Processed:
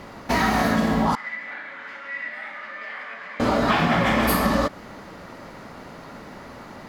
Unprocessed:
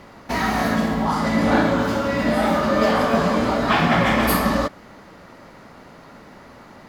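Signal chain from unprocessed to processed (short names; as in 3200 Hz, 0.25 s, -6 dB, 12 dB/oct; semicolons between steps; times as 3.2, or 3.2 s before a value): compressor, threshold -20 dBFS, peak gain reduction 7.5 dB; 1.15–3.4 band-pass 2000 Hz, Q 5; gain +3.5 dB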